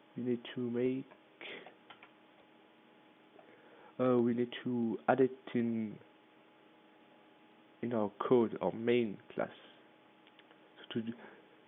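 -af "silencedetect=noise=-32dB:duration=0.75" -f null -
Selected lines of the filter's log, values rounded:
silence_start: 0.97
silence_end: 4.00 | silence_duration: 3.03
silence_start: 5.85
silence_end: 7.83 | silence_duration: 1.98
silence_start: 9.44
silence_end: 10.91 | silence_duration: 1.47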